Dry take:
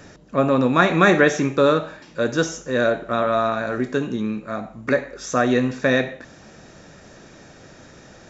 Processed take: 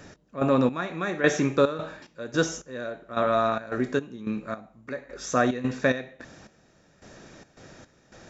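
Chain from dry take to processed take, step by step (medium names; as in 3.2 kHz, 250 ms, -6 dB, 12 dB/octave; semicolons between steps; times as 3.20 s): trance gate "x..xx....xxx.x" 109 bpm -12 dB; trim -3 dB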